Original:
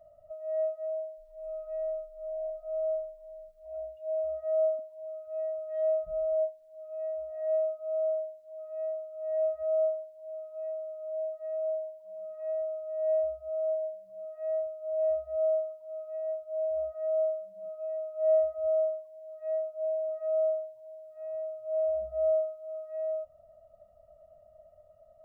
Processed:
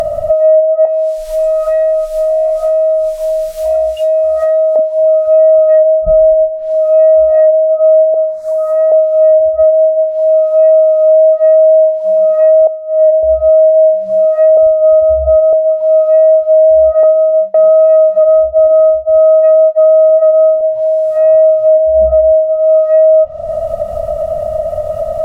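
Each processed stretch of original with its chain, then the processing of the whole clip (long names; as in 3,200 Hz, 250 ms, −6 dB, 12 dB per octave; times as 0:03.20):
0:00.85–0:04.76: tilt shelving filter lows −8.5 dB, about 1,200 Hz + downward compressor 4 to 1, threshold −43 dBFS + double-tracking delay 20 ms −7.5 dB
0:08.14–0:08.92: phaser with its sweep stopped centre 1,200 Hz, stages 4 + one half of a high-frequency compander encoder only
0:12.67–0:13.23: low-pass filter 1,500 Hz + expander for the loud parts 2.5 to 1, over −38 dBFS
0:14.57–0:15.53: phase distortion by the signal itself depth 0.081 ms + low-pass filter 1,200 Hz + low-shelf EQ 220 Hz +7 dB
0:17.03–0:20.61: downward expander −39 dBFS + single-tap delay 510 ms −7.5 dB + highs frequency-modulated by the lows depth 0.11 ms
whole clip: treble cut that deepens with the level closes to 310 Hz, closed at −26 dBFS; upward compression, threshold −36 dBFS; boost into a limiter +32 dB; level −1.5 dB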